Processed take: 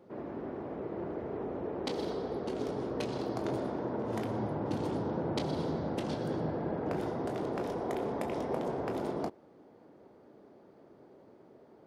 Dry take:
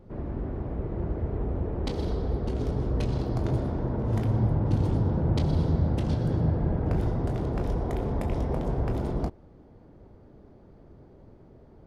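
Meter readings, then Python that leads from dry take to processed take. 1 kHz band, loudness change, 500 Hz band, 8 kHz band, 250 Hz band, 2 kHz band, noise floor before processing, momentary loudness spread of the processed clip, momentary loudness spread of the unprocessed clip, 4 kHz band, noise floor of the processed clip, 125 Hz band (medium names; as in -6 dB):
0.0 dB, -7.0 dB, -1.0 dB, no reading, -5.0 dB, 0.0 dB, -53 dBFS, 5 LU, 7 LU, 0.0 dB, -58 dBFS, -15.5 dB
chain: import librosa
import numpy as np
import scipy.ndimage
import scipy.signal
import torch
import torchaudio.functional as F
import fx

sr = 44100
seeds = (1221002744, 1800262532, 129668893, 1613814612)

y = scipy.signal.sosfilt(scipy.signal.butter(2, 290.0, 'highpass', fs=sr, output='sos'), x)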